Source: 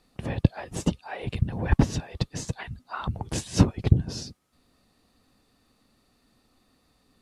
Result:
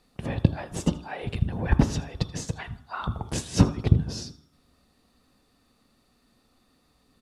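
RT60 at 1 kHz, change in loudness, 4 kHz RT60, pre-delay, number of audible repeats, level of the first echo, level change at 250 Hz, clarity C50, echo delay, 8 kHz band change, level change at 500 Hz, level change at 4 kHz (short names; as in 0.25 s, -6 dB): 0.75 s, +0.5 dB, 0.70 s, 3 ms, 1, -19.5 dB, +0.5 dB, 13.5 dB, 80 ms, 0.0 dB, +0.5 dB, 0.0 dB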